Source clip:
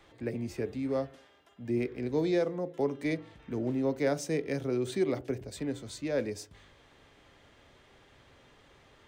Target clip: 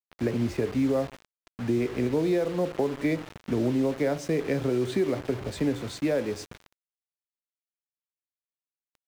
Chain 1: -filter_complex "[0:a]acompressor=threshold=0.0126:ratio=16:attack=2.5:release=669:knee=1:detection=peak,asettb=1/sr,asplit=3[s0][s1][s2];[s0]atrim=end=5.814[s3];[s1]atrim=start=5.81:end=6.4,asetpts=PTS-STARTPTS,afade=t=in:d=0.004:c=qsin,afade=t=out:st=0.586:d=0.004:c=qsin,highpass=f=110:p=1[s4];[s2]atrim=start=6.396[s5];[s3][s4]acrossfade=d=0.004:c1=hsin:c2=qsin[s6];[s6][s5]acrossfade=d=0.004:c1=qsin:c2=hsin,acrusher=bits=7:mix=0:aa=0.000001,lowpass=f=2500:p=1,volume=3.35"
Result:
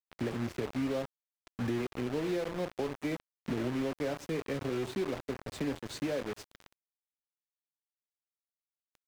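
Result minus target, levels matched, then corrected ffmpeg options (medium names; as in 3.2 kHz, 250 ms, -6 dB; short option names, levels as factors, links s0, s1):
compression: peak gain reduction +8.5 dB
-filter_complex "[0:a]acompressor=threshold=0.0355:ratio=16:attack=2.5:release=669:knee=1:detection=peak,asettb=1/sr,asplit=3[s0][s1][s2];[s0]atrim=end=5.814[s3];[s1]atrim=start=5.81:end=6.4,asetpts=PTS-STARTPTS,afade=t=in:d=0.004:c=qsin,afade=t=out:st=0.586:d=0.004:c=qsin,highpass=f=110:p=1[s4];[s2]atrim=start=6.396[s5];[s3][s4]acrossfade=d=0.004:c1=hsin:c2=qsin[s6];[s6][s5]acrossfade=d=0.004:c1=qsin:c2=hsin,acrusher=bits=7:mix=0:aa=0.000001,lowpass=f=2500:p=1,volume=3.35"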